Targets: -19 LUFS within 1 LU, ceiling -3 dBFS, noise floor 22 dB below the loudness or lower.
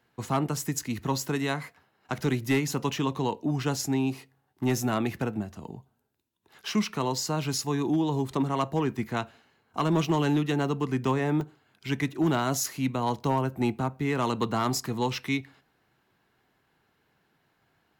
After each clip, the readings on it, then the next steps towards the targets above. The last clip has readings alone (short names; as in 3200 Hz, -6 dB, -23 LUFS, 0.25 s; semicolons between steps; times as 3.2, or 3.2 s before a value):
clipped 0.4%; flat tops at -17.5 dBFS; dropouts 1; longest dropout 1.8 ms; loudness -28.5 LUFS; peak -17.5 dBFS; loudness target -19.0 LUFS
-> clip repair -17.5 dBFS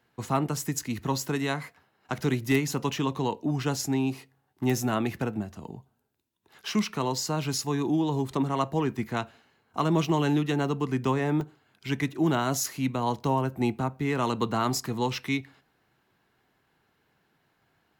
clipped 0.0%; dropouts 1; longest dropout 1.8 ms
-> interpolate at 11.41, 1.8 ms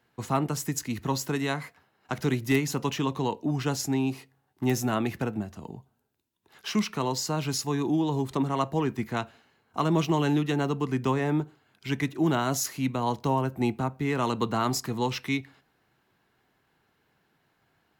dropouts 0; loudness -28.5 LUFS; peak -9.5 dBFS; loudness target -19.0 LUFS
-> gain +9.5 dB; limiter -3 dBFS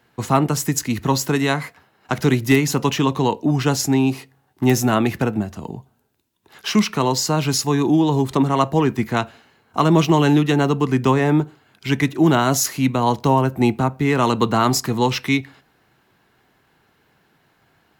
loudness -19.0 LUFS; peak -3.0 dBFS; noise floor -62 dBFS